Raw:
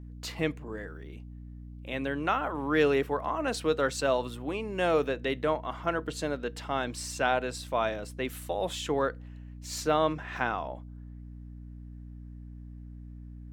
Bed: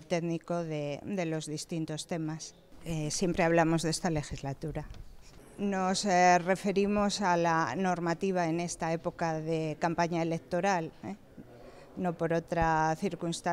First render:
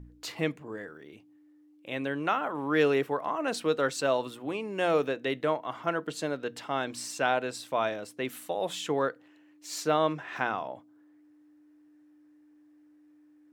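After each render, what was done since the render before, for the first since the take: de-hum 60 Hz, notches 4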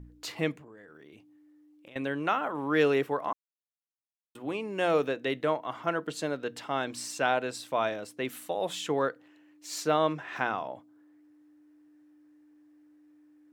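0.58–1.96 s: compression 8:1, threshold -47 dBFS; 3.33–4.35 s: mute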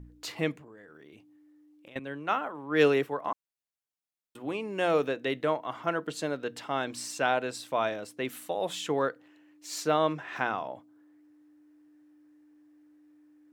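1.99–3.25 s: three bands expanded up and down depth 100%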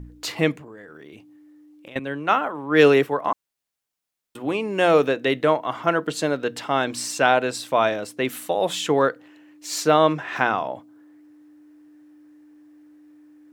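trim +9 dB; peak limiter -3 dBFS, peak gain reduction 2 dB

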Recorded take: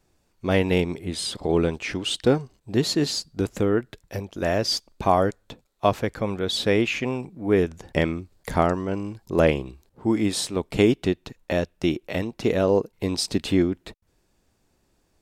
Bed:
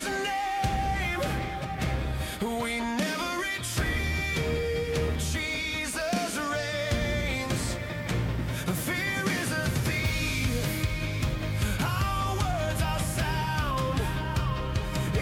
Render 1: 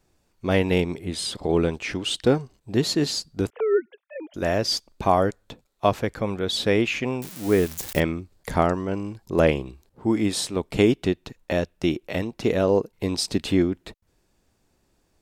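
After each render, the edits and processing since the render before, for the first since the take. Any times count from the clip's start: 3.50–4.34 s: formants replaced by sine waves; 7.22–8.00 s: zero-crossing glitches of -22 dBFS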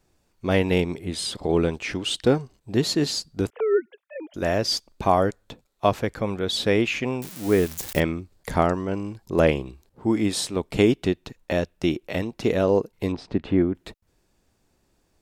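13.12–13.75 s: low-pass 1.7 kHz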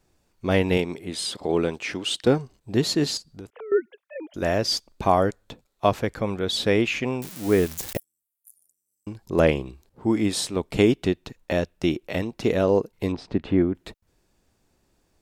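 0.77–2.27 s: high-pass 220 Hz 6 dB/octave; 3.17–3.72 s: compression 2.5:1, threshold -43 dBFS; 7.97–9.07 s: inverse Chebyshev high-pass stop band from 2.8 kHz, stop band 70 dB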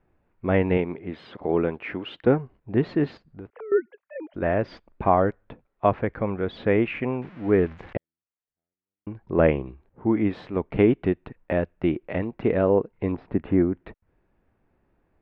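low-pass 2.2 kHz 24 dB/octave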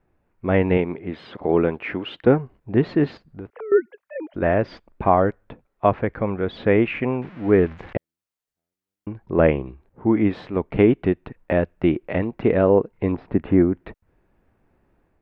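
level rider gain up to 4.5 dB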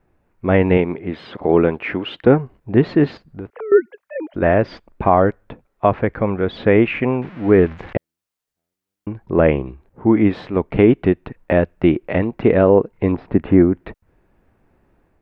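trim +4.5 dB; peak limiter -1 dBFS, peak gain reduction 3 dB

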